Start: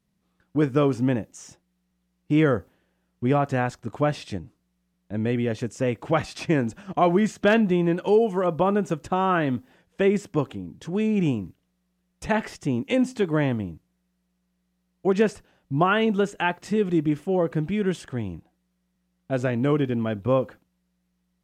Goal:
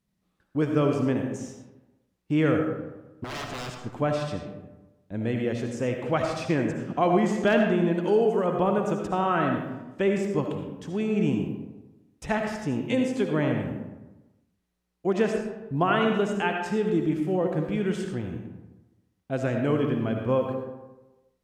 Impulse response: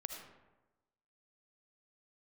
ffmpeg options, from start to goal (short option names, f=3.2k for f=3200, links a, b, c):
-filter_complex "[0:a]asettb=1/sr,asplit=3[a][b][c];[a]atrim=end=3.244[d];[b]atrim=start=3.24:end=3.78,asetpts=PTS-STARTPTS,afade=t=in:d=0.004:c=qsin,afade=t=out:st=0.536:d=0.004:c=qsin,aeval=exprs='0.0422*(abs(mod(val(0)/0.0422+3,4)-2)-1)':c=same[e];[c]atrim=start=3.776[f];[d][e]acrossfade=d=0.004:c1=hsin:c2=qsin[g];[g][f]acrossfade=d=0.004:c1=qsin:c2=hsin[h];[1:a]atrim=start_sample=2205[i];[h][i]afir=irnorm=-1:irlink=0"